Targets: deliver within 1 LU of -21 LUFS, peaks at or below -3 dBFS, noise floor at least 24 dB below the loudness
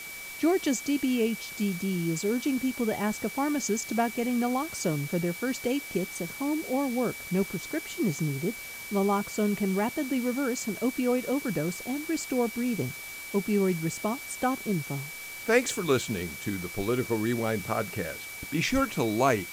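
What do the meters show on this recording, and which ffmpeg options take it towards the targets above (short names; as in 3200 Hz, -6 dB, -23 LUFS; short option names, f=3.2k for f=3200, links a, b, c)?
steady tone 2300 Hz; tone level -40 dBFS; noise floor -41 dBFS; noise floor target -53 dBFS; loudness -29.0 LUFS; peak -9.5 dBFS; loudness target -21.0 LUFS
-> -af "bandreject=f=2.3k:w=30"
-af "afftdn=nr=12:nf=-41"
-af "volume=8dB,alimiter=limit=-3dB:level=0:latency=1"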